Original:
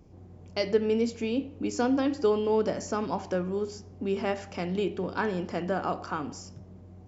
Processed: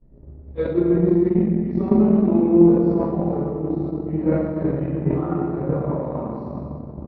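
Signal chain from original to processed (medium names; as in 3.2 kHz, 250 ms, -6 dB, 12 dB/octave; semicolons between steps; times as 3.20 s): frequency-domain pitch shifter -4 st; Bessel low-pass 800 Hz, order 2; feedback delay 88 ms, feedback 49%, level -6 dB; reverberation RT60 2.6 s, pre-delay 4 ms, DRR -14 dB; transient shaper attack +9 dB, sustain -10 dB; decay stretcher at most 45 dB/s; trim -9 dB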